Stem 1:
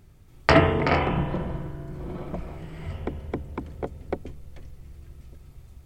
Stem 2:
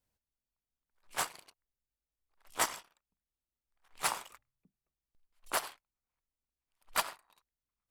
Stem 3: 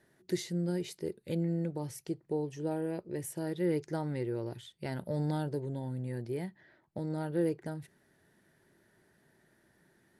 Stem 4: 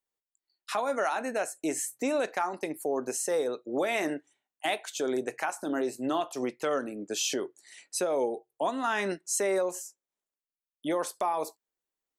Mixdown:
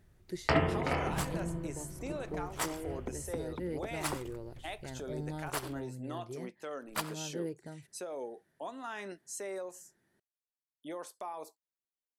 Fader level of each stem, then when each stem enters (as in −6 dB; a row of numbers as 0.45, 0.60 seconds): −10.5, −4.5, −7.5, −12.5 decibels; 0.00, 0.00, 0.00, 0.00 seconds